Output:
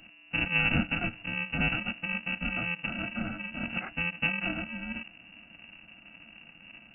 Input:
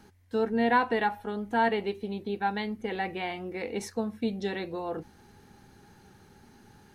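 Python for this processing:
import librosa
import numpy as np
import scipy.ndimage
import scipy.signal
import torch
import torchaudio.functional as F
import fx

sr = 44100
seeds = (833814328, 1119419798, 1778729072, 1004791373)

y = fx.bit_reversed(x, sr, seeds[0], block=128)
y = fx.freq_invert(y, sr, carrier_hz=2800)
y = fx.small_body(y, sr, hz=(220.0, 310.0, 690.0), ring_ms=55, db=13)
y = F.gain(torch.from_numpy(y), 7.0).numpy()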